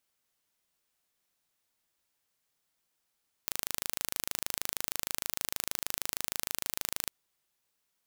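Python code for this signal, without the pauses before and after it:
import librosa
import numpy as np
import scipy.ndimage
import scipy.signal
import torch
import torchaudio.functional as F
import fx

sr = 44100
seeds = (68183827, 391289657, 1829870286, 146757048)

y = 10.0 ** (-4.5 / 20.0) * (np.mod(np.arange(round(3.61 * sr)), round(sr / 26.4)) == 0)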